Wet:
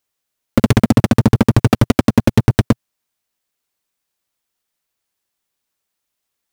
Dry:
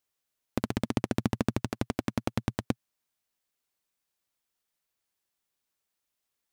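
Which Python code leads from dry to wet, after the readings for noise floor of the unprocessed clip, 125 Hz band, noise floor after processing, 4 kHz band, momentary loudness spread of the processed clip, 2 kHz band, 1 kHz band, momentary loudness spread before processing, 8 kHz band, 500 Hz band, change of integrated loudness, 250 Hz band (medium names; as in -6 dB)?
-84 dBFS, +20.0 dB, -78 dBFS, +14.5 dB, 6 LU, +15.0 dB, +15.0 dB, 6 LU, +14.5 dB, +16.0 dB, +17.5 dB, +17.0 dB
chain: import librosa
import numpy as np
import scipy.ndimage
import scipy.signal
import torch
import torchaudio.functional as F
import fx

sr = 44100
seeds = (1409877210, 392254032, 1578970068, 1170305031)

p1 = fx.over_compress(x, sr, threshold_db=-32.0, ratio=-1.0)
p2 = x + (p1 * 10.0 ** (2.0 / 20.0))
p3 = fx.leveller(p2, sr, passes=5)
p4 = 10.0 ** (-10.0 / 20.0) * np.tanh(p3 / 10.0 ** (-10.0 / 20.0))
y = p4 * 10.0 ** (6.0 / 20.0)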